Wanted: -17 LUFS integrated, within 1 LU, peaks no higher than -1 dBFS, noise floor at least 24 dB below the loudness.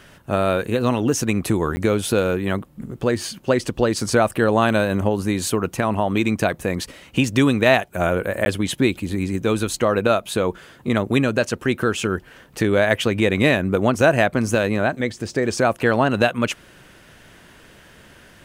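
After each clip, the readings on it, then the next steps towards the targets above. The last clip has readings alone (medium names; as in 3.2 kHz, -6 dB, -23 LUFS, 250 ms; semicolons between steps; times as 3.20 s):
dropouts 2; longest dropout 10 ms; loudness -20.5 LUFS; peak level -2.5 dBFS; loudness target -17.0 LUFS
-> interpolate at 1.76/8.45 s, 10 ms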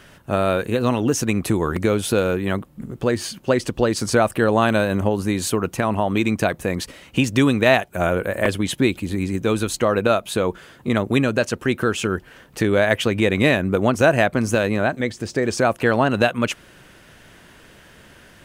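dropouts 0; loudness -20.5 LUFS; peak level -2.5 dBFS; loudness target -17.0 LUFS
-> trim +3.5 dB; peak limiter -1 dBFS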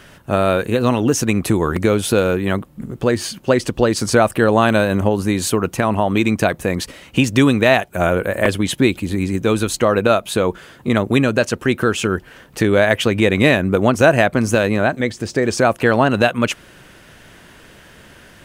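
loudness -17.0 LUFS; peak level -1.0 dBFS; noise floor -45 dBFS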